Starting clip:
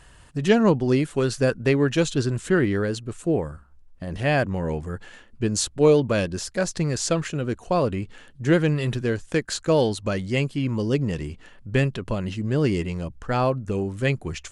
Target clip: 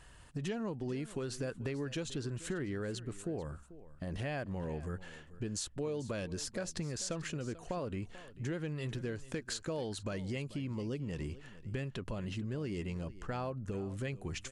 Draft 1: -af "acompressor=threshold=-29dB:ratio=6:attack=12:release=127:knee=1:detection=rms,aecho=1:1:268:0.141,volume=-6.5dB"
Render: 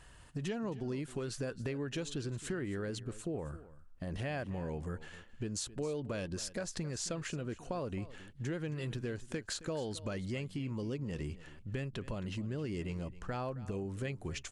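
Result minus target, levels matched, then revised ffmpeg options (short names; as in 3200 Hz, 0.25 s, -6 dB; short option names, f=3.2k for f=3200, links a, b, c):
echo 0.172 s early
-af "acompressor=threshold=-29dB:ratio=6:attack=12:release=127:knee=1:detection=rms,aecho=1:1:440:0.141,volume=-6.5dB"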